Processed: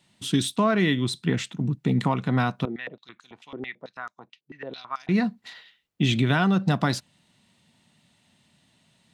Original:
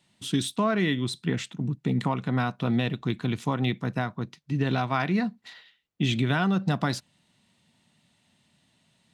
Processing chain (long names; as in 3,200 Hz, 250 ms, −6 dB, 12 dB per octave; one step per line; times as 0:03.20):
0:02.65–0:05.09: band-pass on a step sequencer 9.1 Hz 370–6,400 Hz
level +3 dB